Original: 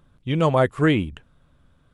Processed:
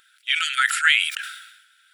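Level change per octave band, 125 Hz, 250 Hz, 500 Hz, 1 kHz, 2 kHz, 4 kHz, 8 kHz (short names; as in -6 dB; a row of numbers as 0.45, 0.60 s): under -40 dB, under -40 dB, under -40 dB, -1.0 dB, +11.5 dB, +13.5 dB, n/a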